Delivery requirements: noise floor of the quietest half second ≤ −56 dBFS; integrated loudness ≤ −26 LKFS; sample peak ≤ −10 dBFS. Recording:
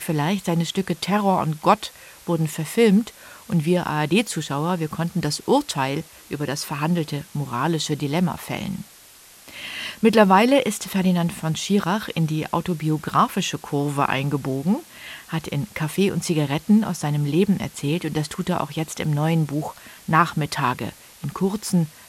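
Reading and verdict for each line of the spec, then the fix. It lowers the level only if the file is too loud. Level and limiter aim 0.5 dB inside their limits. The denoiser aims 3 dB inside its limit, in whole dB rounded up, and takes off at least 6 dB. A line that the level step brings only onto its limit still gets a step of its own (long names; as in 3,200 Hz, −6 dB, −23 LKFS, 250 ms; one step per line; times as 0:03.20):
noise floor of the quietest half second −48 dBFS: out of spec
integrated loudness −22.5 LKFS: out of spec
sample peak −2.5 dBFS: out of spec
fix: broadband denoise 7 dB, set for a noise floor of −48 dBFS
level −4 dB
brickwall limiter −10.5 dBFS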